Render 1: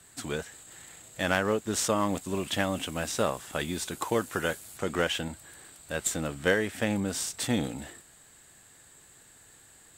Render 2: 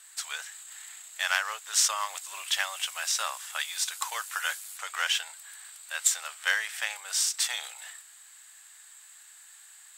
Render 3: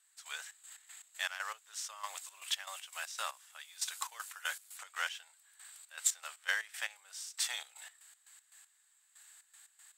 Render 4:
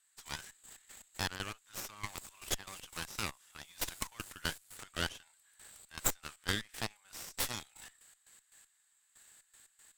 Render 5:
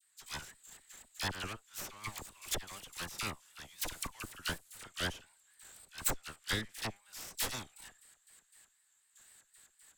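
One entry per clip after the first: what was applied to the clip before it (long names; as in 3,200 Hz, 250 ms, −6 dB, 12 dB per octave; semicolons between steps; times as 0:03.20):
dynamic equaliser 5,400 Hz, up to +5 dB, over −49 dBFS, Q 2.1; Bessel high-pass filter 1,400 Hz, order 6; level +4.5 dB
gate pattern "..xx.x.x.x.x.." 118 BPM −12 dB; level −6.5 dB
in parallel at +2 dB: downward compressor, threshold −45 dBFS, peak gain reduction 18.5 dB; on the sum: harmonic generator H 3 −14 dB, 6 −11 dB, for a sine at −13.5 dBFS; level −1.5 dB
all-pass dispersion lows, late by 40 ms, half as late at 1,500 Hz; pitch vibrato 4 Hz 91 cents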